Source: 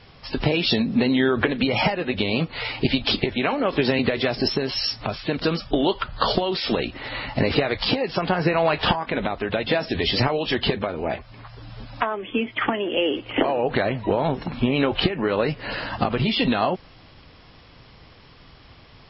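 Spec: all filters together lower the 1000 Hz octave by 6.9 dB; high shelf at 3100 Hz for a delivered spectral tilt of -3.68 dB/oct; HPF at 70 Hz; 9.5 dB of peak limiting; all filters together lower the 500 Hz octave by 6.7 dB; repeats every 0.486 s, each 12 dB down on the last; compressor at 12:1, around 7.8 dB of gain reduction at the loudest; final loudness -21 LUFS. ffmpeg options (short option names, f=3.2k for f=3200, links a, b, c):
-af "highpass=70,equalizer=f=500:t=o:g=-7,equalizer=f=1k:t=o:g=-6,highshelf=f=3.1k:g=-5.5,acompressor=threshold=-25dB:ratio=12,alimiter=limit=-21.5dB:level=0:latency=1,aecho=1:1:486|972|1458:0.251|0.0628|0.0157,volume=11.5dB"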